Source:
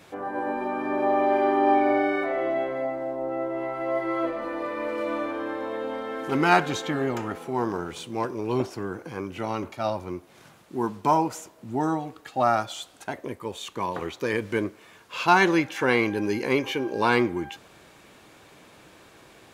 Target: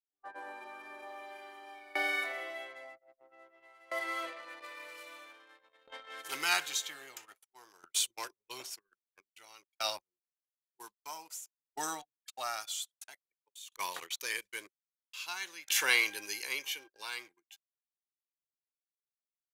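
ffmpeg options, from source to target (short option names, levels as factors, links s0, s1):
-filter_complex "[0:a]aderivative,agate=range=0.0891:threshold=0.00316:ratio=16:detection=peak,equalizer=f=230:t=o:w=0.32:g=-10,anlmdn=0.000631,acrossover=split=170|1800[s0][s1][s2];[s2]dynaudnorm=f=540:g=5:m=2.11[s3];[s0][s1][s3]amix=inputs=3:normalize=0,aeval=exprs='val(0)*pow(10,-23*if(lt(mod(0.51*n/s,1),2*abs(0.51)/1000),1-mod(0.51*n/s,1)/(2*abs(0.51)/1000),(mod(0.51*n/s,1)-2*abs(0.51)/1000)/(1-2*abs(0.51)/1000))/20)':c=same,volume=2.66"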